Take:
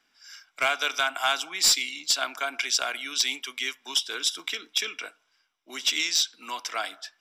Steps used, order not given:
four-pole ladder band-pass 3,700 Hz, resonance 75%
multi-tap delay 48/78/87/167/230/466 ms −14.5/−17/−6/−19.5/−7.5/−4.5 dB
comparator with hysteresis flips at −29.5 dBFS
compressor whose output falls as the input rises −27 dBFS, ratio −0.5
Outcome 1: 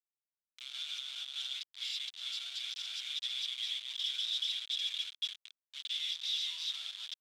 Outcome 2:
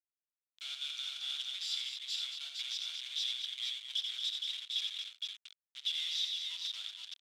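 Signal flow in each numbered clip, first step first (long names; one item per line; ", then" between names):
multi-tap delay, then compressor whose output falls as the input rises, then comparator with hysteresis, then four-pole ladder band-pass
comparator with hysteresis, then multi-tap delay, then compressor whose output falls as the input rises, then four-pole ladder band-pass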